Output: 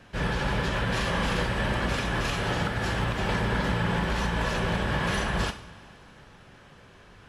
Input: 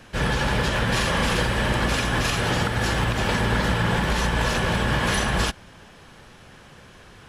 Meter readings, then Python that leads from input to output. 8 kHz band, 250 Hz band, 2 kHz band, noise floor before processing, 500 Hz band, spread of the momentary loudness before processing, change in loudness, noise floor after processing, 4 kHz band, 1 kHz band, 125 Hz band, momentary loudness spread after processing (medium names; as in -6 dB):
-9.5 dB, -4.0 dB, -5.0 dB, -48 dBFS, -4.0 dB, 1 LU, -5.0 dB, -53 dBFS, -6.5 dB, -4.5 dB, -4.5 dB, 2 LU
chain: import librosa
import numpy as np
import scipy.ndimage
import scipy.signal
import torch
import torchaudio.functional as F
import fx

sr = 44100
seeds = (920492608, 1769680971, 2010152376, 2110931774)

y = fx.high_shelf(x, sr, hz=5400.0, db=-8.0)
y = fx.rev_double_slope(y, sr, seeds[0], early_s=0.5, late_s=3.2, knee_db=-18, drr_db=7.0)
y = F.gain(torch.from_numpy(y), -5.0).numpy()